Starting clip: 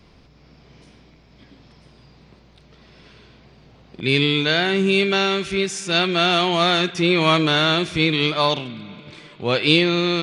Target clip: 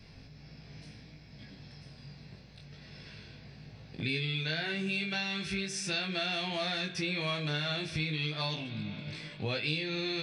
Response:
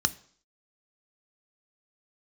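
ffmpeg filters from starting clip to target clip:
-filter_complex "[0:a]flanger=delay=19:depth=2:speed=0.22,asplit=2[link_01][link_02];[1:a]atrim=start_sample=2205[link_03];[link_02][link_03]afir=irnorm=-1:irlink=0,volume=-14dB[link_04];[link_01][link_04]amix=inputs=2:normalize=0,acompressor=threshold=-34dB:ratio=4,volume=1dB"

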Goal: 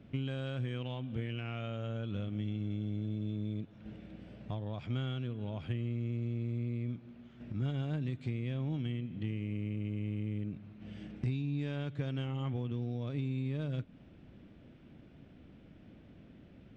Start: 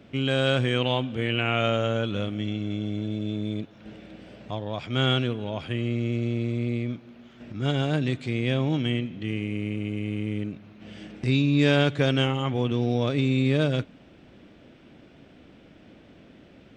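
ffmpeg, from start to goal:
ffmpeg -i in.wav -af "acompressor=threshold=-29dB:ratio=10,bass=frequency=250:gain=10,treble=frequency=4000:gain=-5,aeval=exprs='0.188*(cos(1*acos(clip(val(0)/0.188,-1,1)))-cos(1*PI/2))+0.00266*(cos(7*acos(clip(val(0)/0.188,-1,1)))-cos(7*PI/2))':channel_layout=same,volume=-9dB" out.wav

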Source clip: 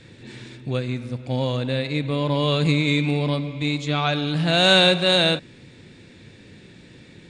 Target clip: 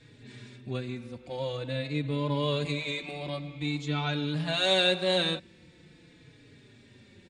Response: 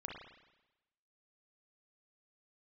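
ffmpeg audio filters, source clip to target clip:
-filter_complex "[0:a]asplit=2[link_01][link_02];[link_02]adelay=4.3,afreqshift=-0.47[link_03];[link_01][link_03]amix=inputs=2:normalize=1,volume=-5.5dB"

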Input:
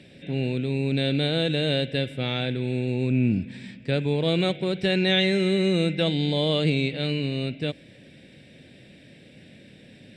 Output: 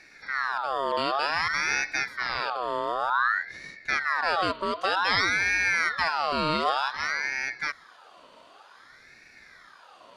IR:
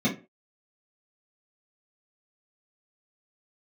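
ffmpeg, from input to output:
-af "aeval=exprs='val(0)*sin(2*PI*1400*n/s+1400*0.45/0.54*sin(2*PI*0.54*n/s))':channel_layout=same"

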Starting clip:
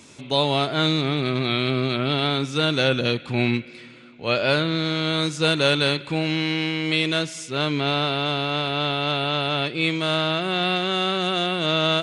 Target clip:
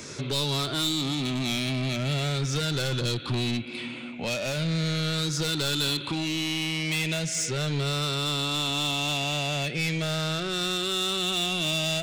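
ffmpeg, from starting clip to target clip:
ffmpeg -i in.wav -filter_complex "[0:a]afftfilt=real='re*pow(10,8/40*sin(2*PI*(0.56*log(max(b,1)*sr/1024/100)/log(2)-(-0.39)*(pts-256)/sr)))':imag='im*pow(10,8/40*sin(2*PI*(0.56*log(max(b,1)*sr/1024/100)/log(2)-(-0.39)*(pts-256)/sr)))':win_size=1024:overlap=0.75,asplit=2[link_01][link_02];[link_02]acompressor=threshold=-29dB:ratio=6,volume=2.5dB[link_03];[link_01][link_03]amix=inputs=2:normalize=0,asoftclip=type=tanh:threshold=-19.5dB,acrossover=split=180|3000[link_04][link_05][link_06];[link_05]acompressor=threshold=-33dB:ratio=3[link_07];[link_04][link_07][link_06]amix=inputs=3:normalize=0" out.wav

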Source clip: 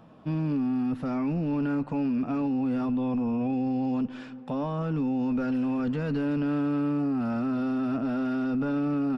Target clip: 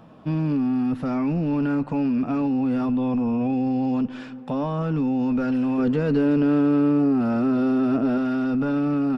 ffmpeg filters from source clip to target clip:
ffmpeg -i in.wav -filter_complex "[0:a]asettb=1/sr,asplit=3[link_01][link_02][link_03];[link_01]atrim=end=5.784[link_04];[link_02]atrim=start=5.78:end=8.18,asetpts=PTS-STARTPTS,afade=type=in:duration=0.004:curve=qsin,afade=type=out:start_time=2.396:duration=0.004:curve=qsin,equalizer=frequency=400:width=1.6:gain=7[link_05];[link_03]atrim=start=8.176[link_06];[link_04][link_05]acrossfade=duration=0.004:curve1=hsin:curve2=qsin[link_07];[link_07][link_06]acrossfade=duration=0.004:curve1=qsin:curve2=hsin,volume=4.5dB" out.wav

